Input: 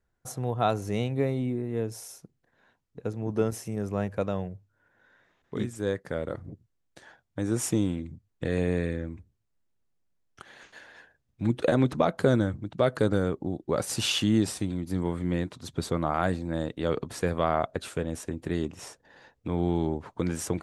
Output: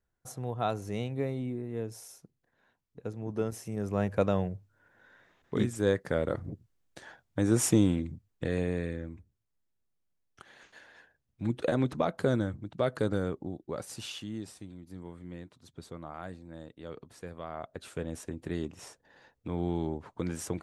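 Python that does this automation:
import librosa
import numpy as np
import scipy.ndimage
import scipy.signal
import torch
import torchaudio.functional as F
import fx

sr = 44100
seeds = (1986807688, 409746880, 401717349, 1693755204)

y = fx.gain(x, sr, db=fx.line((3.53, -5.5), (4.21, 2.5), (8.01, 2.5), (8.73, -5.0), (13.35, -5.0), (14.25, -15.5), (17.49, -15.5), (18.03, -5.0)))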